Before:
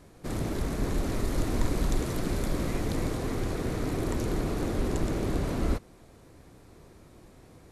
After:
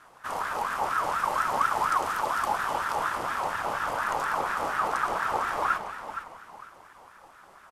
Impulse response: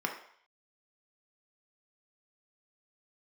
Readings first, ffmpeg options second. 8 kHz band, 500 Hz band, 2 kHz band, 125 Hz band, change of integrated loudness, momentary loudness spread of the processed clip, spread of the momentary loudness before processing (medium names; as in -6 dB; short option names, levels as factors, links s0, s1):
-0.5 dB, -2.0 dB, +11.5 dB, -18.0 dB, +3.0 dB, 11 LU, 2 LU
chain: -filter_complex "[0:a]asplit=5[s0][s1][s2][s3][s4];[s1]adelay=452,afreqshift=-37,volume=0.316[s5];[s2]adelay=904,afreqshift=-74,volume=0.101[s6];[s3]adelay=1356,afreqshift=-111,volume=0.0324[s7];[s4]adelay=1808,afreqshift=-148,volume=0.0104[s8];[s0][s5][s6][s7][s8]amix=inputs=5:normalize=0,asplit=2[s9][s10];[1:a]atrim=start_sample=2205,adelay=141[s11];[s10][s11]afir=irnorm=-1:irlink=0,volume=0.2[s12];[s9][s12]amix=inputs=2:normalize=0,aeval=exprs='val(0)*sin(2*PI*1100*n/s+1100*0.25/4.2*sin(2*PI*4.2*n/s))':c=same,volume=1.26"